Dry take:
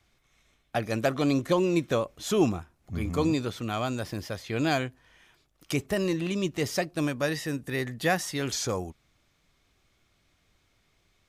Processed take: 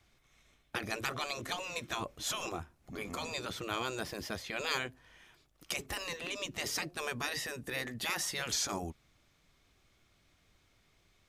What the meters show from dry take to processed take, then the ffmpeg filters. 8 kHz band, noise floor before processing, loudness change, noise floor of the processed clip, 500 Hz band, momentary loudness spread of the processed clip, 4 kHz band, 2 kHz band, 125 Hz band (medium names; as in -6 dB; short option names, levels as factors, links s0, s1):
-1.0 dB, -70 dBFS, -8.0 dB, -70 dBFS, -13.5 dB, 7 LU, -1.0 dB, -3.5 dB, -15.0 dB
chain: -af "afftfilt=real='re*lt(hypot(re,im),0.126)':imag='im*lt(hypot(re,im),0.126)':win_size=1024:overlap=0.75,acontrast=89,volume=0.398"